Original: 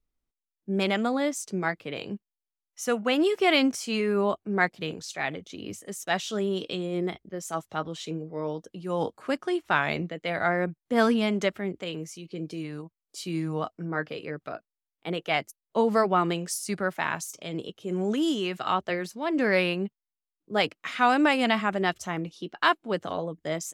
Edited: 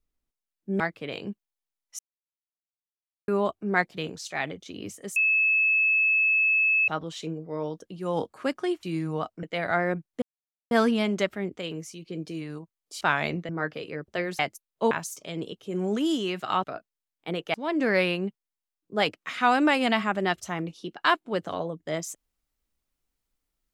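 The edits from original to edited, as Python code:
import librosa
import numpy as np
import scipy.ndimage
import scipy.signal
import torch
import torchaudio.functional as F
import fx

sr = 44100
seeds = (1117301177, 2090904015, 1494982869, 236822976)

y = fx.edit(x, sr, fx.cut(start_s=0.8, length_s=0.84),
    fx.silence(start_s=2.83, length_s=1.29),
    fx.bleep(start_s=6.0, length_s=1.72, hz=2600.0, db=-19.0),
    fx.swap(start_s=9.67, length_s=0.48, other_s=13.24, other_length_s=0.6),
    fx.insert_silence(at_s=10.94, length_s=0.49),
    fx.swap(start_s=14.43, length_s=0.9, other_s=18.81, other_length_s=0.31),
    fx.cut(start_s=15.85, length_s=1.23), tone=tone)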